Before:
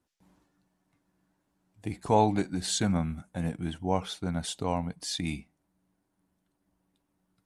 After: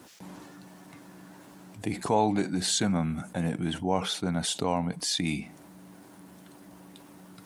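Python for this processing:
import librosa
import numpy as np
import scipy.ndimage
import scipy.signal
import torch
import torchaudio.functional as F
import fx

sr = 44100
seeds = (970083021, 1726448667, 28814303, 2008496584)

y = scipy.signal.sosfilt(scipy.signal.butter(2, 140.0, 'highpass', fs=sr, output='sos'), x)
y = fx.env_flatten(y, sr, amount_pct=50)
y = y * librosa.db_to_amplitude(-2.0)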